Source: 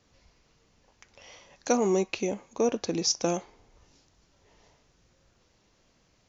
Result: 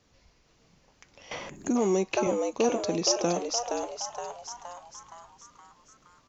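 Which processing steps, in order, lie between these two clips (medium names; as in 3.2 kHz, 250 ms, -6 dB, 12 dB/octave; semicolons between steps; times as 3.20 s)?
frequency-shifting echo 469 ms, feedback 52%, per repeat +120 Hz, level -4.5 dB; 1.49–1.76 s: time-frequency box 410–6400 Hz -19 dB; 1.31–2.27 s: three bands compressed up and down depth 70%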